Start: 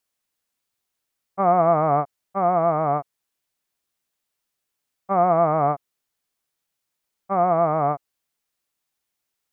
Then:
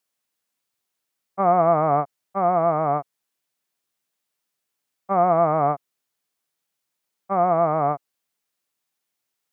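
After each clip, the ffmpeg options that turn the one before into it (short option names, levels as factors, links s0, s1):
-af "highpass=110"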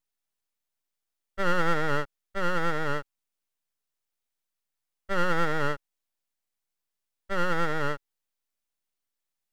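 -af "aeval=exprs='abs(val(0))':c=same,volume=0.596"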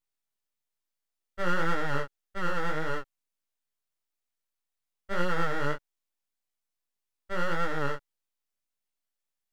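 -af "flanger=delay=16:depth=6.5:speed=1.7"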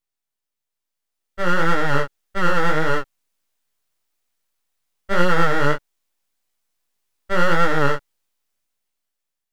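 -af "dynaudnorm=f=410:g=7:m=3.76,volume=1.19"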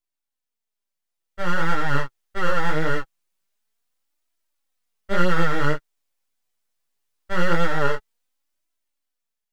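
-af "flanger=delay=2.9:depth=5.4:regen=25:speed=0.23:shape=triangular"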